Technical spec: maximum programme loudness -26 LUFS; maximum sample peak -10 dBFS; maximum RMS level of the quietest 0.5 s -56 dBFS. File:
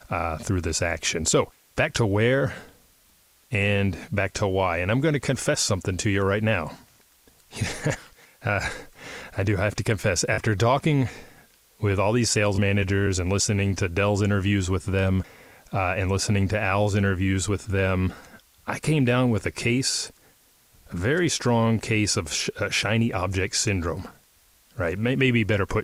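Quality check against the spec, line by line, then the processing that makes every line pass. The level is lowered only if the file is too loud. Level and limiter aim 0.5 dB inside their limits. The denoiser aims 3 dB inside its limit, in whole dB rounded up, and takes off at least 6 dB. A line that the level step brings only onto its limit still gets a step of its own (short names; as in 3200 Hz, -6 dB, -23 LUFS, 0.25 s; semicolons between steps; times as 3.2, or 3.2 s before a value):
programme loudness -24.0 LUFS: fail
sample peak -8.5 dBFS: fail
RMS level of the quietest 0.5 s -60 dBFS: OK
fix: gain -2.5 dB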